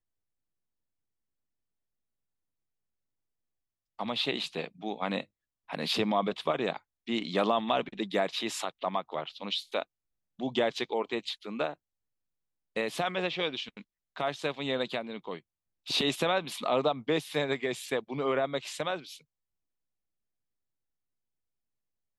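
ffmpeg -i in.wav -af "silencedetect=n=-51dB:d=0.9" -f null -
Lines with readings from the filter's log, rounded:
silence_start: 0.00
silence_end: 3.99 | silence_duration: 3.99
silence_start: 11.74
silence_end: 12.76 | silence_duration: 1.02
silence_start: 19.21
silence_end: 22.18 | silence_duration: 2.97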